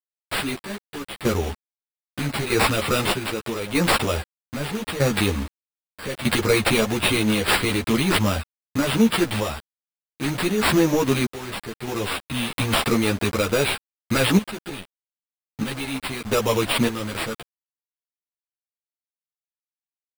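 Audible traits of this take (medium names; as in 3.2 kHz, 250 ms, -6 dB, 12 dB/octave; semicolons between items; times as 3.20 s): aliases and images of a low sample rate 6.3 kHz, jitter 0%; random-step tremolo 1.6 Hz, depth 85%; a quantiser's noise floor 6-bit, dither none; a shimmering, thickened sound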